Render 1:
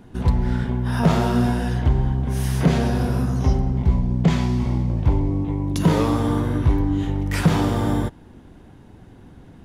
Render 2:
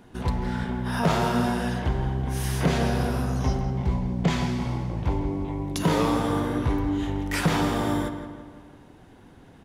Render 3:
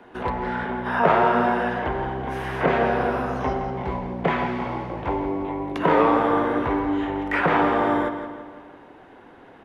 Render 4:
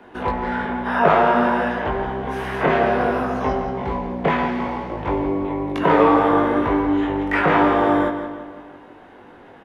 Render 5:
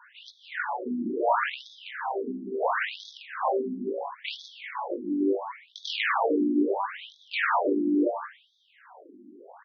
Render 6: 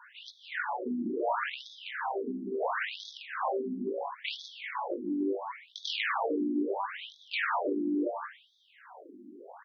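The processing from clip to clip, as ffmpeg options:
-filter_complex "[0:a]lowshelf=f=310:g=-9,asplit=2[s0][s1];[s1]adelay=167,lowpass=f=3300:p=1,volume=0.355,asplit=2[s2][s3];[s3]adelay=167,lowpass=f=3300:p=1,volume=0.54,asplit=2[s4][s5];[s5]adelay=167,lowpass=f=3300:p=1,volume=0.54,asplit=2[s6][s7];[s7]adelay=167,lowpass=f=3300:p=1,volume=0.54,asplit=2[s8][s9];[s9]adelay=167,lowpass=f=3300:p=1,volume=0.54,asplit=2[s10][s11];[s11]adelay=167,lowpass=f=3300:p=1,volume=0.54[s12];[s0][s2][s4][s6][s8][s10][s12]amix=inputs=7:normalize=0"
-filter_complex "[0:a]acrossover=split=320 2900:gain=0.141 1 0.112[s0][s1][s2];[s0][s1][s2]amix=inputs=3:normalize=0,acrossover=split=320|1600|2800[s3][s4][s5][s6];[s6]acompressor=threshold=0.001:ratio=6[s7];[s3][s4][s5][s7]amix=inputs=4:normalize=0,volume=2.66"
-filter_complex "[0:a]asplit=2[s0][s1];[s1]adelay=20,volume=0.631[s2];[s0][s2]amix=inputs=2:normalize=0,volume=1.19"
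-af "aeval=exprs='0.2*(abs(mod(val(0)/0.2+3,4)-2)-1)':c=same,afftfilt=real='re*between(b*sr/1024,250*pow(4700/250,0.5+0.5*sin(2*PI*0.73*pts/sr))/1.41,250*pow(4700/250,0.5+0.5*sin(2*PI*0.73*pts/sr))*1.41)':imag='im*between(b*sr/1024,250*pow(4700/250,0.5+0.5*sin(2*PI*0.73*pts/sr))/1.41,250*pow(4700/250,0.5+0.5*sin(2*PI*0.73*pts/sr))*1.41)':win_size=1024:overlap=0.75"
-af "acompressor=threshold=0.0251:ratio=2"

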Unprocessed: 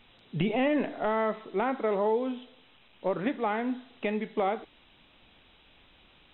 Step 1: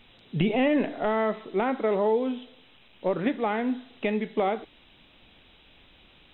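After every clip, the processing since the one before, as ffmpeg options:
-af "equalizer=f=1100:w=0.97:g=-3.5,volume=1.58"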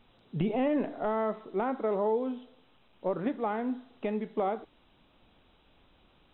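-af "highshelf=f=1600:t=q:w=1.5:g=-6,volume=0.562"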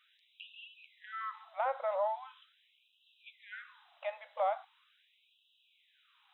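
-af "afftfilt=real='re*gte(b*sr/1024,480*pow(2600/480,0.5+0.5*sin(2*PI*0.41*pts/sr)))':imag='im*gte(b*sr/1024,480*pow(2600/480,0.5+0.5*sin(2*PI*0.41*pts/sr)))':win_size=1024:overlap=0.75"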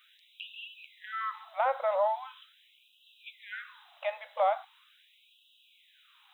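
-af "crystalizer=i=1.5:c=0,volume=1.78"

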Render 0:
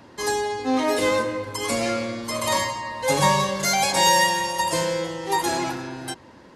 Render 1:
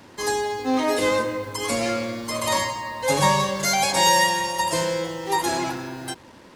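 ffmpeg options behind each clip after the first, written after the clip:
-af "acrusher=bits=7:mix=0:aa=0.5"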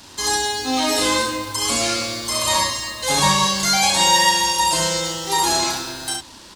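-filter_complex "[0:a]acrossover=split=2800[s0][s1];[s1]acompressor=threshold=0.02:ratio=4:attack=1:release=60[s2];[s0][s2]amix=inputs=2:normalize=0,equalizer=f=125:t=o:w=1:g=-11,equalizer=f=250:t=o:w=1:g=-6,equalizer=f=500:t=o:w=1:g=-12,equalizer=f=1000:t=o:w=1:g=-3,equalizer=f=2000:t=o:w=1:g=-8,equalizer=f=4000:t=o:w=1:g=5,equalizer=f=8000:t=o:w=1:g=5,asplit=2[s3][s4];[s4]aecho=0:1:35|67:0.562|0.631[s5];[s3][s5]amix=inputs=2:normalize=0,volume=2.66"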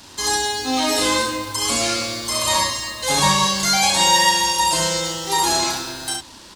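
-af anull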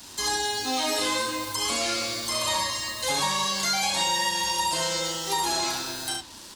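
-filter_complex "[0:a]highshelf=f=6800:g=11,flanger=delay=4:depth=6.2:regen=-73:speed=0.56:shape=triangular,acrossover=split=290|4900[s0][s1][s2];[s0]acompressor=threshold=0.00708:ratio=4[s3];[s1]acompressor=threshold=0.0631:ratio=4[s4];[s2]acompressor=threshold=0.0158:ratio=4[s5];[s3][s4][s5]amix=inputs=3:normalize=0"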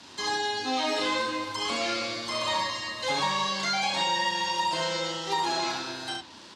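-af "highpass=120,lowpass=4000"

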